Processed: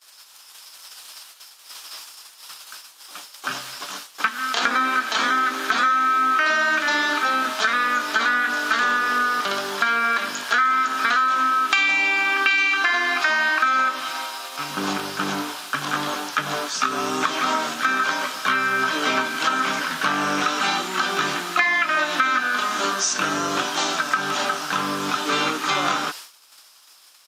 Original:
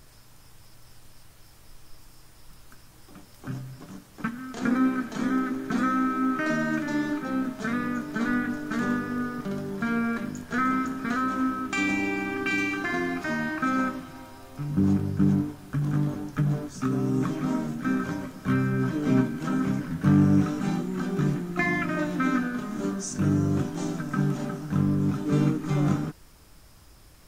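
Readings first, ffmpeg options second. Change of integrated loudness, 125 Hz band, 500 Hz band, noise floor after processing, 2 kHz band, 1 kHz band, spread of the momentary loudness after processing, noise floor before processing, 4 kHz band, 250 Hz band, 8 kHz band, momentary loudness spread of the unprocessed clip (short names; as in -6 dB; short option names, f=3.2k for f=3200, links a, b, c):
+6.0 dB, -15.5 dB, +3.0 dB, -49 dBFS, +12.5 dB, +13.0 dB, 15 LU, -52 dBFS, +19.5 dB, -8.0 dB, +13.5 dB, 8 LU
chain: -filter_complex "[0:a]acrossover=split=4100[a][b];[a]crystalizer=i=4.5:c=0[c];[c][b]amix=inputs=2:normalize=0,agate=range=-33dB:threshold=-40dB:ratio=3:detection=peak,equalizer=f=2k:t=o:w=0.91:g=-8,apsyclip=17dB,highpass=1.2k,acrossover=split=4900[d][e];[e]acompressor=threshold=-43dB:ratio=4:attack=1:release=60[f];[d][f]amix=inputs=2:normalize=0,aresample=32000,aresample=44100,acompressor=threshold=-23dB:ratio=5,volume=5.5dB"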